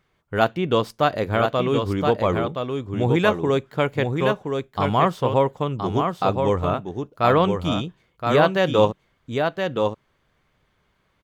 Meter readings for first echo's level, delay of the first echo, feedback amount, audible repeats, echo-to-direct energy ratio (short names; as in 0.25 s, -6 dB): -5.0 dB, 1.021 s, no steady repeat, 1, -5.0 dB